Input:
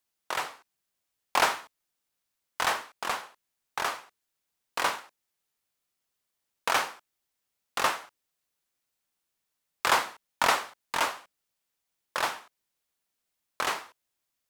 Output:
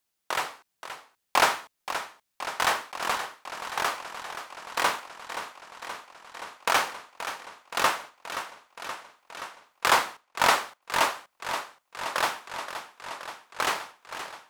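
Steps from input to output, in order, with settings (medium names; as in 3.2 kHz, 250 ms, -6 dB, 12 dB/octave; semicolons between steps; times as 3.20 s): 9.88–10.82 s: expander -44 dBFS; modulated delay 525 ms, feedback 75%, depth 55 cents, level -11 dB; trim +2.5 dB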